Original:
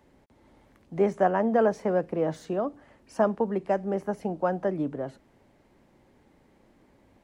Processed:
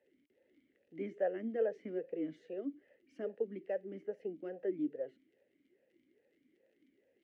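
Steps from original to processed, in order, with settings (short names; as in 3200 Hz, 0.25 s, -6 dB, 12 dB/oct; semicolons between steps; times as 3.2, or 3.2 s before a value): crackle 32/s -46 dBFS; vowel sweep e-i 2.4 Hz; gain -2 dB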